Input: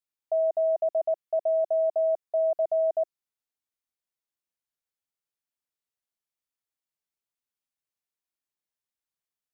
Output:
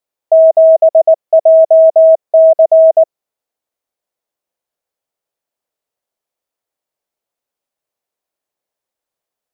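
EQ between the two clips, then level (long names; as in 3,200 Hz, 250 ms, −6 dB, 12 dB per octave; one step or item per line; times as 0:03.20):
parametric band 580 Hz +13 dB 1.5 octaves
+6.0 dB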